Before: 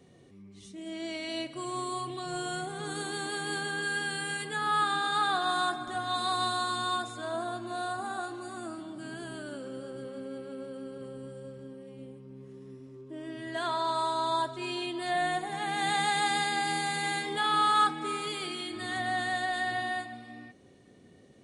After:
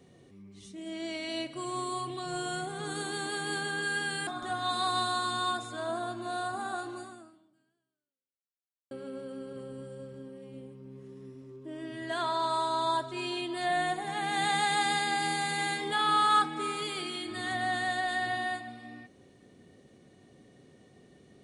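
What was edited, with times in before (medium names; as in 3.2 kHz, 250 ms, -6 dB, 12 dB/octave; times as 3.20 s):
4.27–5.72 s: delete
8.43–10.36 s: fade out exponential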